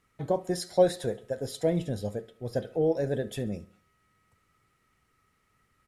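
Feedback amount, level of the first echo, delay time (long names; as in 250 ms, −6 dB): 49%, −21.0 dB, 69 ms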